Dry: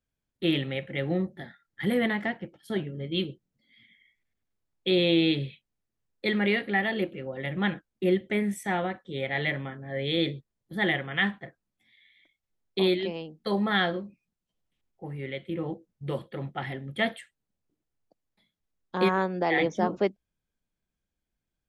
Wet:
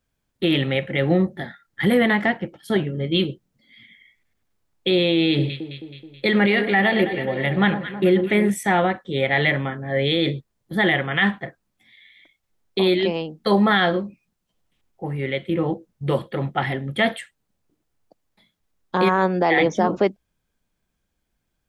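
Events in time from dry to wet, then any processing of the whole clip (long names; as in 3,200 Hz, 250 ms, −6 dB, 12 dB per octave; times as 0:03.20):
0:05.28–0:08.50: delay that swaps between a low-pass and a high-pass 107 ms, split 1,200 Hz, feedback 74%, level −10 dB
whole clip: parametric band 1,000 Hz +2.5 dB 1.4 octaves; boost into a limiter +17.5 dB; level −8 dB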